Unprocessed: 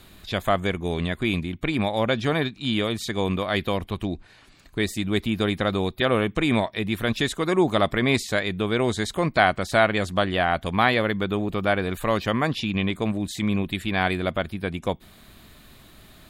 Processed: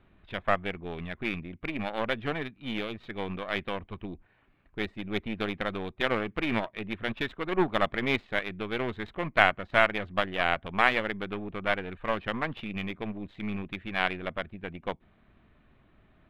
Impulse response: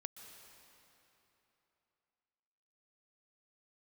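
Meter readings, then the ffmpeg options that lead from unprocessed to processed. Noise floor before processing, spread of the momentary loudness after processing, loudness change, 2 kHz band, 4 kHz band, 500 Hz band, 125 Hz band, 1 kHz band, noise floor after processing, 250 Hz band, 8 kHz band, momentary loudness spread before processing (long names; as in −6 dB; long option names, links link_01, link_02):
−52 dBFS, 13 LU, −6.5 dB, −3.0 dB, −7.5 dB, −7.5 dB, −12.0 dB, −5.0 dB, −64 dBFS, −9.5 dB, below −20 dB, 7 LU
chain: -af "aeval=exprs='0.708*(cos(1*acos(clip(val(0)/0.708,-1,1)))-cos(1*PI/2))+0.1*(cos(3*acos(clip(val(0)/0.708,-1,1)))-cos(3*PI/2))+0.0447*(cos(4*acos(clip(val(0)/0.708,-1,1)))-cos(4*PI/2))+0.0708*(cos(6*acos(clip(val(0)/0.708,-1,1)))-cos(6*PI/2))+0.0282*(cos(7*acos(clip(val(0)/0.708,-1,1)))-cos(7*PI/2))':channel_layout=same,adynamicsmooth=sensitivity=7.5:basefreq=2000,highshelf=frequency=4100:width_type=q:width=1.5:gain=-13.5"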